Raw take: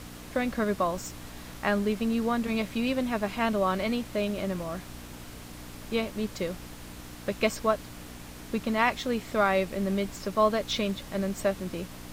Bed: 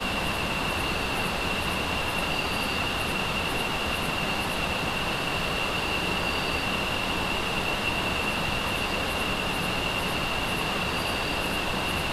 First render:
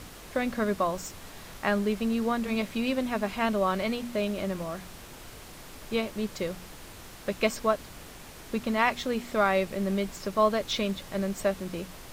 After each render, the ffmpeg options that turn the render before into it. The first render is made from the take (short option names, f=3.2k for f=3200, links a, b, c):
-af "bandreject=f=60:t=h:w=4,bandreject=f=120:t=h:w=4,bandreject=f=180:t=h:w=4,bandreject=f=240:t=h:w=4,bandreject=f=300:t=h:w=4"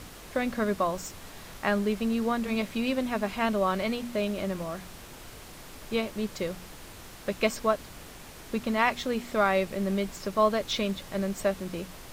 -af anull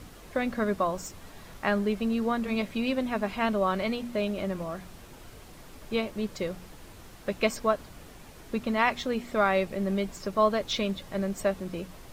-af "afftdn=nr=6:nf=-46"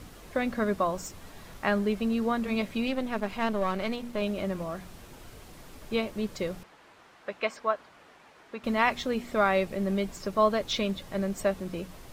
-filter_complex "[0:a]asettb=1/sr,asplit=3[a][b][c];[a]atrim=end=2.874[d];[b]atrim=start=2.87:end=4.22,asetpts=PTS-STARTPTS,afade=t=in:d=0.004:c=qsin,afade=t=out:st=1.346:d=0.004:c=qsin,aeval=exprs='if(lt(val(0),0),0.447*val(0),val(0))':c=same[e];[c]atrim=start=4.216[f];[d][e]acrossfade=d=0.004:c1=hsin:c2=qsin[g];[g][f]acrossfade=d=0.004:c1=qsin:c2=hsin,asettb=1/sr,asplit=3[h][i][j];[h]atrim=end=6.634[k];[i]atrim=start=6.63:end=8.64,asetpts=PTS-STARTPTS,afade=t=in:d=0.004:c=qsin,afade=t=out:st=2.006:d=0.004:c=qsin,bandpass=f=1.3k:t=q:w=0.69[l];[j]atrim=start=8.636[m];[k][l]acrossfade=d=0.004:c1=hsin:c2=qsin[n];[n][m]acrossfade=d=0.004:c1=qsin:c2=hsin"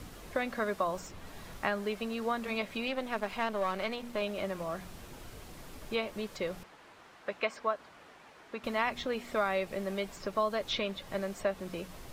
-filter_complex "[0:a]acrossover=split=450|4300[a][b][c];[a]acompressor=threshold=-41dB:ratio=4[d];[b]acompressor=threshold=-28dB:ratio=4[e];[c]acompressor=threshold=-53dB:ratio=4[f];[d][e][f]amix=inputs=3:normalize=0"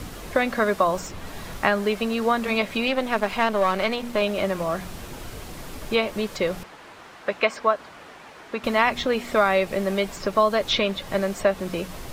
-af "volume=11dB"